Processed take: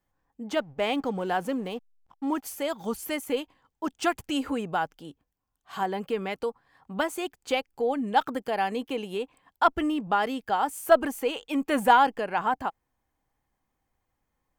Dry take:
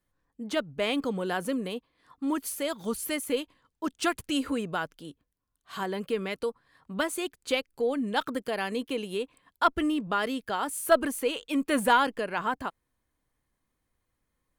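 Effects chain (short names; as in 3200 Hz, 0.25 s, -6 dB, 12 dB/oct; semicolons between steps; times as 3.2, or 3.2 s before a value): 0.61–2.47 backlash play -46 dBFS; thirty-one-band EQ 800 Hz +11 dB, 4000 Hz -5 dB, 10000 Hz -8 dB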